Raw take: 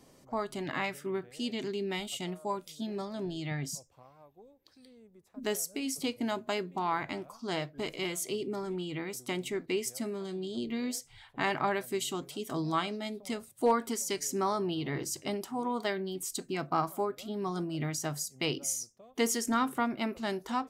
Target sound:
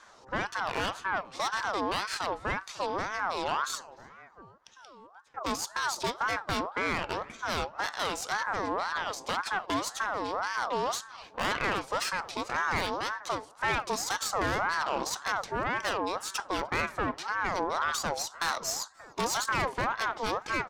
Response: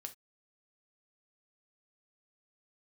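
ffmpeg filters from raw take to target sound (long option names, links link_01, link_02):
-filter_complex "[0:a]lowpass=frequency=5100:width_type=q:width=1.9,equalizer=frequency=75:width=0.32:gain=5,aeval=exprs='(tanh(35.5*val(0)+0.6)-tanh(0.6))/35.5':channel_layout=same,asplit=2[link_01][link_02];[link_02]adelay=299,lowpass=frequency=1600:poles=1,volume=-20dB,asplit=2[link_03][link_04];[link_04]adelay=299,lowpass=frequency=1600:poles=1,volume=0.45,asplit=2[link_05][link_06];[link_06]adelay=299,lowpass=frequency=1600:poles=1,volume=0.45[link_07];[link_01][link_03][link_05][link_07]amix=inputs=4:normalize=0,aeval=exprs='val(0)*sin(2*PI*1000*n/s+1000*0.35/1.9*sin(2*PI*1.9*n/s))':channel_layout=same,volume=8dB"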